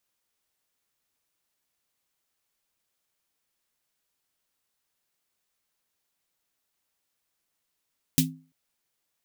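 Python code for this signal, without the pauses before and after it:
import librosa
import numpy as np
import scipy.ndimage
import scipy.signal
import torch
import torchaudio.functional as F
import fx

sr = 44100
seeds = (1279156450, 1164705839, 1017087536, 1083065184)

y = fx.drum_snare(sr, seeds[0], length_s=0.34, hz=160.0, second_hz=260.0, noise_db=1.5, noise_from_hz=2500.0, decay_s=0.37, noise_decay_s=0.14)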